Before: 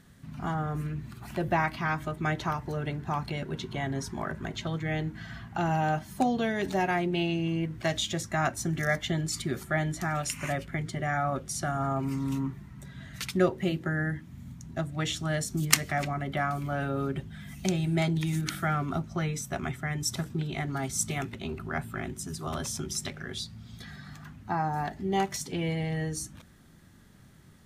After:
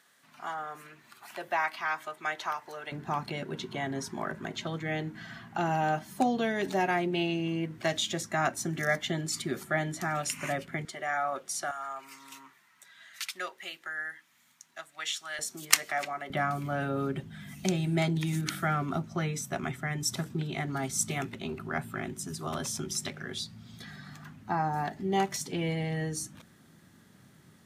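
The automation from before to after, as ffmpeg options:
-af "asetnsamples=n=441:p=0,asendcmd='2.92 highpass f 190;10.85 highpass f 530;11.71 highpass f 1300;15.39 highpass f 550;16.3 highpass f 130',highpass=730"

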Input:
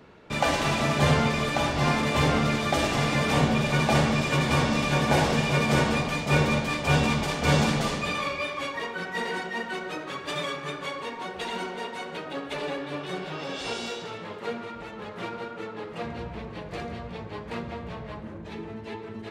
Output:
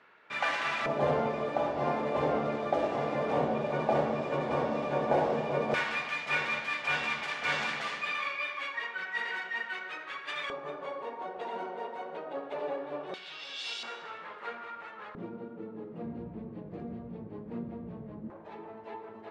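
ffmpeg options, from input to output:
-af "asetnsamples=n=441:p=0,asendcmd='0.86 bandpass f 570;5.74 bandpass f 1900;10.5 bandpass f 650;13.14 bandpass f 3600;13.83 bandpass f 1400;15.15 bandpass f 240;18.3 bandpass f 800',bandpass=f=1700:t=q:w=1.4:csg=0"

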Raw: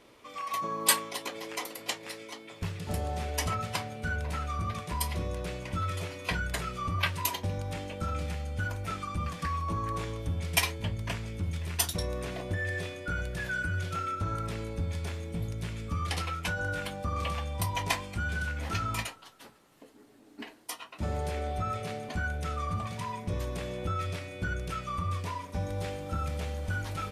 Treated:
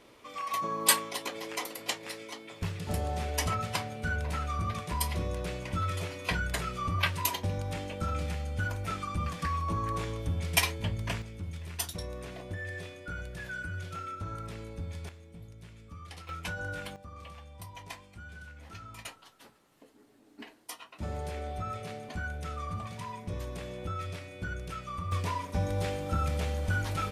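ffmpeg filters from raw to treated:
-af "asetnsamples=n=441:p=0,asendcmd='11.22 volume volume -6dB;15.09 volume volume -14dB;16.29 volume volume -4.5dB;16.96 volume volume -14.5dB;19.05 volume volume -4dB;25.12 volume volume 3dB',volume=1.06"

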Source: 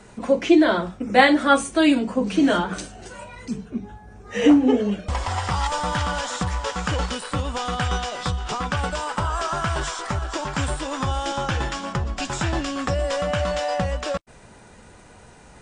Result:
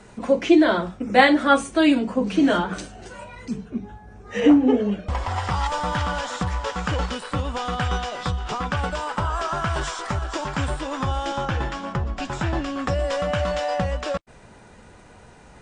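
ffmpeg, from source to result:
-af "asetnsamples=n=441:p=0,asendcmd='1.29 lowpass f 5500;4.4 lowpass f 2600;5.36 lowpass f 4000;9.74 lowpass f 7500;10.55 lowpass f 3600;11.45 lowpass f 2200;12.87 lowpass f 5100',lowpass=f=8900:p=1"

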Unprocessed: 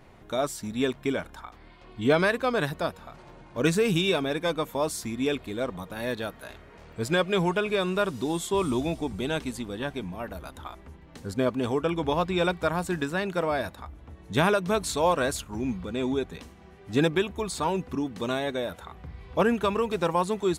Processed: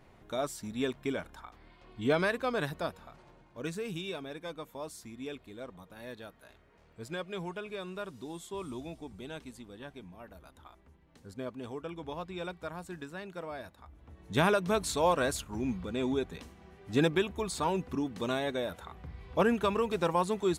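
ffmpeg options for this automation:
-af "volume=1.68,afade=t=out:st=2.96:d=0.64:silence=0.398107,afade=t=in:st=13.78:d=0.64:silence=0.298538"

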